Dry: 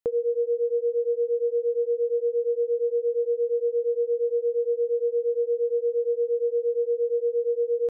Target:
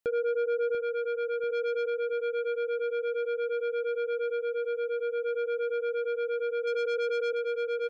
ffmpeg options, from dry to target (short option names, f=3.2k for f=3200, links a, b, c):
-filter_complex "[0:a]asettb=1/sr,asplit=3[a][b][c];[a]atrim=end=1.494[d];[b]atrim=start=1.49:end=1.9,asetpts=PTS-STARTPTS,afade=t=in:d=0.004:c=qsin,afade=t=out:st=0.406:d=0.004:c=qsin,aecho=1:1:6.4:0.36,atrim=end_sample=18081[e];[c]atrim=start=1.896[f];[d][e]acrossfade=d=0.004:c1=hsin:c2=qsin[g];[g][f]acrossfade=d=0.004:c1=qsin:c2=hsin,asplit=3[h][i][j];[h]afade=t=out:st=4.35:d=0.02[k];[i]asubboost=boost=6.5:cutoff=76,afade=t=in:st=4.35:d=0.02,afade=t=out:st=5.25:d=0.02[l];[j]afade=t=in:st=5.25:d=0.02[m];[k][l][m]amix=inputs=3:normalize=0,asettb=1/sr,asplit=3[n][o][p];[n]atrim=end=6.674[q];[o]atrim=start=6.67:end=7.33,asetpts=PTS-STARTPTS,afade=t=in:d=0.004:c=qsin,afade=t=out:st=0.656:d=0.004:c=qsin,acontrast=31[r];[p]atrim=start=7.326[s];[q][r]acrossfade=d=0.004:c1=hsin:c2=qsin[t];[t][s]acrossfade=d=0.004:c1=qsin:c2=hsin,asoftclip=type=tanh:threshold=-28.5dB,aecho=1:1:690|1380|2070|2760:0.376|0.15|0.0601|0.0241,volume=3dB"